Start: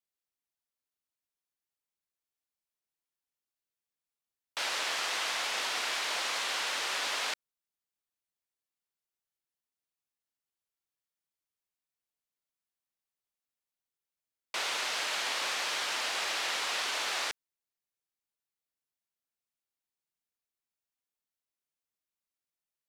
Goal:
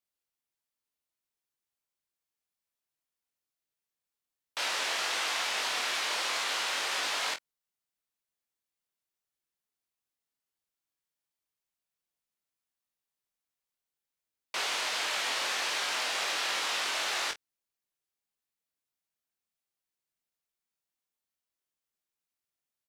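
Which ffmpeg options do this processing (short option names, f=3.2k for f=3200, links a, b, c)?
-af "aecho=1:1:22|47:0.562|0.188"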